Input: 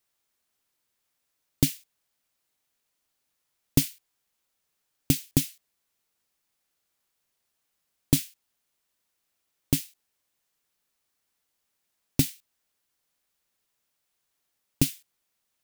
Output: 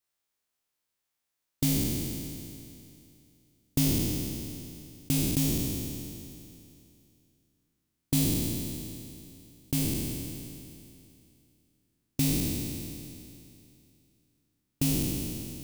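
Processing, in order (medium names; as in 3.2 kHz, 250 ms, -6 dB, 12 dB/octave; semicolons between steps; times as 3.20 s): spectral sustain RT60 2.64 s; trim -8.5 dB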